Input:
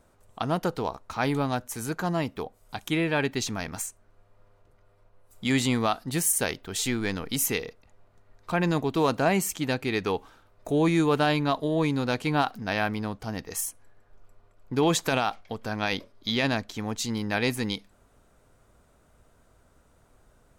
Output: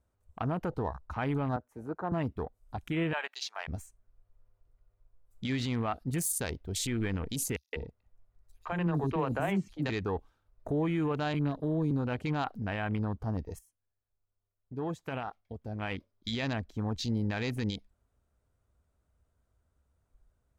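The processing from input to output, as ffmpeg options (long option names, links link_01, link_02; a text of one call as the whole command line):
ffmpeg -i in.wav -filter_complex "[0:a]asettb=1/sr,asplit=3[link_01][link_02][link_03];[link_01]atrim=end=1.564[link_04];[link_02]atrim=start=1.56:end=2.12,asetpts=PTS-STARTPTS,afade=type=in:duration=0.004:curve=qsin,afade=type=out:start_time=0.556:duration=0.004:curve=qsin,acrossover=split=270 2000:gain=0.224 1 0.141[link_05][link_06][link_07];[link_05][link_06][link_07]amix=inputs=3:normalize=0[link_08];[link_03]atrim=start=2.116[link_09];[link_04][link_08]acrossfade=duration=0.004:curve1=hsin:curve2=qsin[link_10];[link_10][link_09]acrossfade=duration=0.004:curve1=qsin:curve2=hsin,asettb=1/sr,asplit=3[link_11][link_12][link_13];[link_11]atrim=end=3.134[link_14];[link_12]atrim=start=3.13:end=3.68,asetpts=PTS-STARTPTS,afade=type=in:duration=0.004:curve=qsin,afade=type=out:start_time=0.546:duration=0.004:curve=qsin,highpass=frequency=650:width=0.5412,highpass=frequency=650:width=1.3066[link_15];[link_13]atrim=start=3.676[link_16];[link_14][link_15]acrossfade=duration=0.004:curve1=hsin:curve2=qsin[link_17];[link_17][link_16]acrossfade=duration=0.004:curve1=qsin:curve2=hsin,asettb=1/sr,asplit=3[link_18][link_19][link_20];[link_18]atrim=end=7.564[link_21];[link_19]atrim=start=7.56:end=9.9,asetpts=PTS-STARTPTS,afade=type=in:duration=0.004:curve=qsin,afade=type=out:start_time=2.336:duration=0.004:curve=qsin,acrossover=split=360|5400[link_22][link_23][link_24];[link_23]adelay=170[link_25];[link_22]adelay=200[link_26];[link_26][link_25][link_24]amix=inputs=3:normalize=0,atrim=end_sample=103194[link_27];[link_20]atrim=start=9.896[link_28];[link_21][link_27]acrossfade=duration=0.004:curve1=hsin:curve2=qsin[link_29];[link_29][link_28]acrossfade=duration=0.004:curve1=qsin:curve2=hsin,asettb=1/sr,asplit=3[link_30][link_31][link_32];[link_30]atrim=end=11.344[link_33];[link_31]atrim=start=11.34:end=11.91,asetpts=PTS-STARTPTS,afade=type=in:duration=0.004:curve=qsin,afade=type=out:start_time=0.566:duration=0.004:curve=qsin,acrossover=split=450|3000[link_34][link_35][link_36];[link_35]acompressor=threshold=-37dB:ratio=6:attack=3.2:release=140:knee=2.83:detection=peak[link_37];[link_34][link_37][link_36]amix=inputs=3:normalize=0[link_38];[link_32]atrim=start=11.906[link_39];[link_33][link_38]acrossfade=duration=0.004:curve1=hsin:curve2=qsin[link_40];[link_40][link_39]acrossfade=duration=0.004:curve1=qsin:curve2=hsin,asplit=2[link_41][link_42];[link_41]atrim=end=13.59,asetpts=PTS-STARTPTS,afade=type=out:start_time=13.586:duration=0.004:curve=hsin:silence=0.188365[link_43];[link_42]atrim=start=13.59,asetpts=PTS-STARTPTS,afade=type=in:duration=3.32:curve=qua:silence=0.188365[link_44];[link_43][link_44]concat=n=2:v=0:a=1,afwtdn=0.0158,equalizer=frequency=68:width_type=o:width=1.4:gain=13.5,alimiter=limit=-19dB:level=0:latency=1:release=55,volume=-3dB" out.wav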